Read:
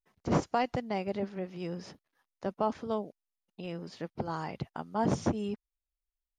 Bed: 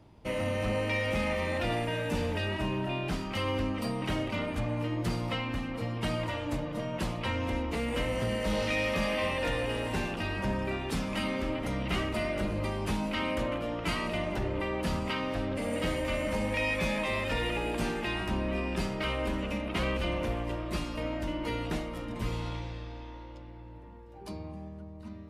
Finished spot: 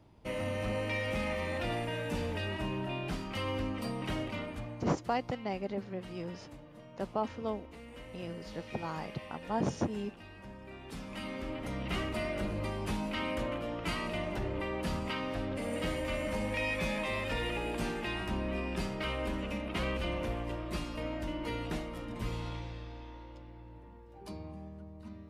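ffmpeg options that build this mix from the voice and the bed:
-filter_complex "[0:a]adelay=4550,volume=-3dB[a];[1:a]volume=10dB,afade=t=out:st=4.22:d=0.71:silence=0.211349,afade=t=in:st=10.61:d=1.42:silence=0.199526[b];[a][b]amix=inputs=2:normalize=0"

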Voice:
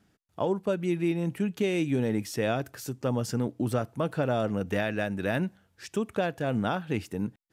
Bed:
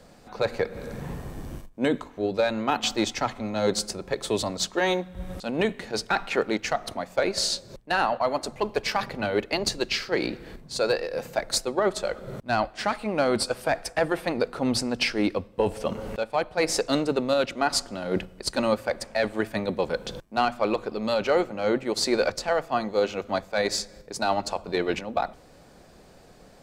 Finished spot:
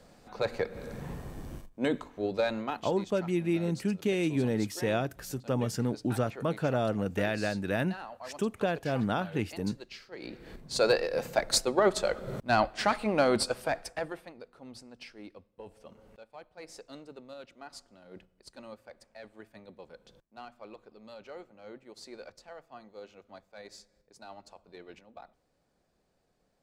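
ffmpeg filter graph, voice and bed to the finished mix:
-filter_complex "[0:a]adelay=2450,volume=-1.5dB[a];[1:a]volume=14dB,afade=t=out:st=2.54:d=0.31:silence=0.188365,afade=t=in:st=10.18:d=0.61:silence=0.112202,afade=t=out:st=13.09:d=1.23:silence=0.0749894[b];[a][b]amix=inputs=2:normalize=0"

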